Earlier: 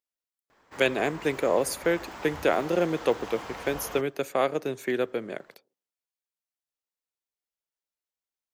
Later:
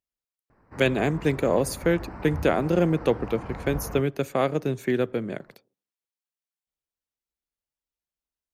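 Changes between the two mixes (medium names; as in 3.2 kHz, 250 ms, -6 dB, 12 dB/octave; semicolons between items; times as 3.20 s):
background: add boxcar filter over 13 samples; master: add tone controls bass +14 dB, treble -1 dB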